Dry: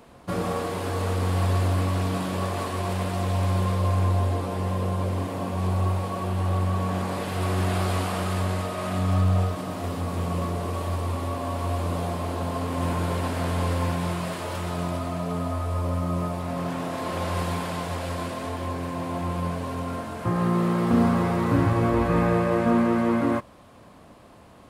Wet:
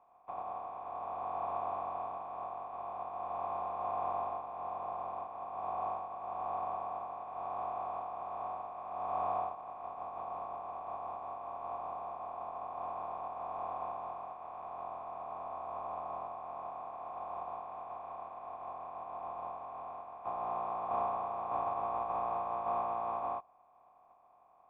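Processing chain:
compressing power law on the bin magnitudes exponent 0.2
formant resonators in series a
dynamic equaliser 2,000 Hz, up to −4 dB, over −55 dBFS, Q 1.6
level +3 dB

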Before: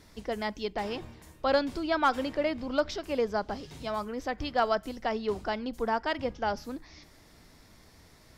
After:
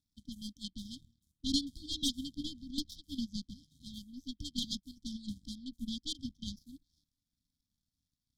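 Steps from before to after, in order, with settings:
power curve on the samples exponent 2
linear-phase brick-wall band-stop 300–3,100 Hz
level +6.5 dB

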